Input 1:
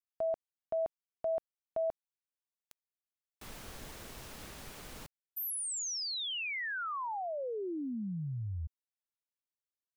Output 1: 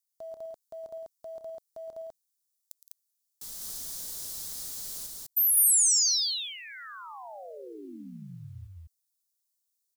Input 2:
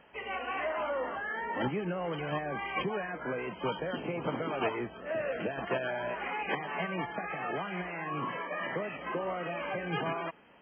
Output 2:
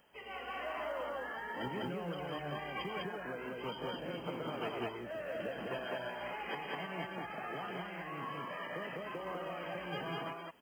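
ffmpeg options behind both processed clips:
-af "aexciter=amount=10.8:drive=3.5:freq=3800,acrusher=bits=8:mode=log:mix=0:aa=0.000001,aecho=1:1:113.7|166.2|201.2:0.251|0.251|0.891,volume=0.355"

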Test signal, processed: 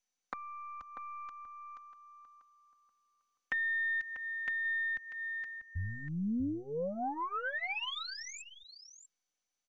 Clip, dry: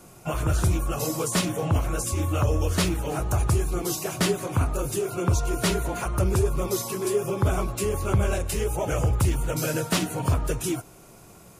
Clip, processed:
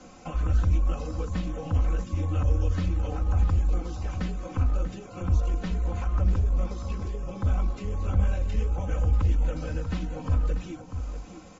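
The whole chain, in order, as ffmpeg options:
-filter_complex "[0:a]acrossover=split=150[s0][s1];[s1]acompressor=threshold=0.0112:ratio=6[s2];[s0][s2]amix=inputs=2:normalize=0,asplit=2[s3][s4];[s4]adelay=641.4,volume=0.355,highshelf=f=4000:g=-14.4[s5];[s3][s5]amix=inputs=2:normalize=0,aeval=exprs='0.211*(cos(1*acos(clip(val(0)/0.211,-1,1)))-cos(1*PI/2))+0.00168*(cos(4*acos(clip(val(0)/0.211,-1,1)))-cos(4*PI/2))+0.00596*(cos(8*acos(clip(val(0)/0.211,-1,1)))-cos(8*PI/2))':c=same,acrossover=split=3500[s6][s7];[s7]acompressor=threshold=0.002:ratio=4:attack=1:release=60[s8];[s6][s8]amix=inputs=2:normalize=0,aecho=1:1:3.9:0.91" -ar 24000 -c:a mp2 -b:a 96k

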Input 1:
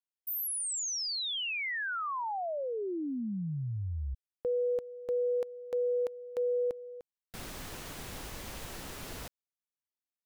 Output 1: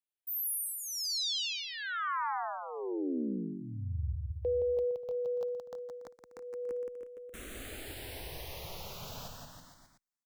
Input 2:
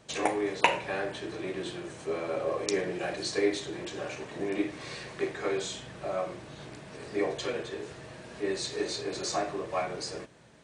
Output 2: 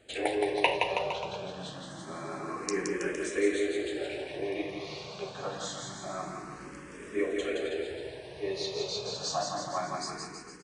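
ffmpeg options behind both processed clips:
-filter_complex "[0:a]aecho=1:1:170|323|460.7|584.6|696.2:0.631|0.398|0.251|0.158|0.1,asplit=2[s0][s1];[s1]afreqshift=0.26[s2];[s0][s2]amix=inputs=2:normalize=1"

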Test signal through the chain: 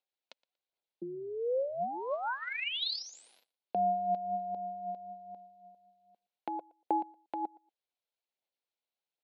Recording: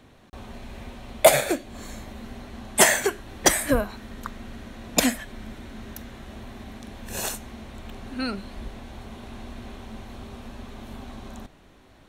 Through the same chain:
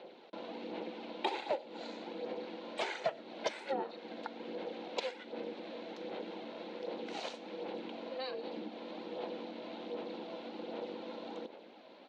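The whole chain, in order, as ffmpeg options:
-af "acompressor=threshold=0.0126:ratio=2.5,aphaser=in_gain=1:out_gain=1:delay=2.7:decay=0.44:speed=1.3:type=sinusoidal,aeval=exprs='val(0)*sin(2*PI*260*n/s)':c=same,highpass=f=260:w=0.5412,highpass=f=260:w=1.3066,equalizer=f=280:t=q:w=4:g=-8,equalizer=f=530:t=q:w=4:g=4,equalizer=f=780:t=q:w=4:g=4,equalizer=f=1200:t=q:w=4:g=-9,equalizer=f=1800:t=q:w=4:g=-6,equalizer=f=4100:t=q:w=4:g=4,lowpass=f=4200:w=0.5412,lowpass=f=4200:w=1.3066,aecho=1:1:118|236:0.0631|0.0126,volume=1.19"

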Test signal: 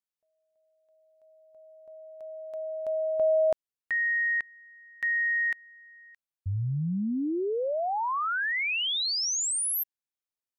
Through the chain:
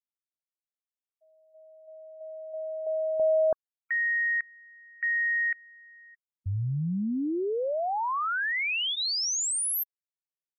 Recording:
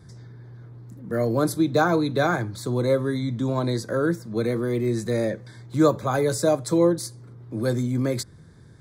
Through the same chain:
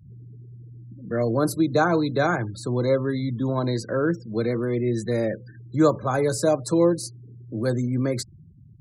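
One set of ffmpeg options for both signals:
-af "bandreject=f=3600:w=20,afftfilt=real='re*gte(hypot(re,im),0.0112)':imag='im*gte(hypot(re,im),0.0112)':win_size=1024:overlap=0.75"

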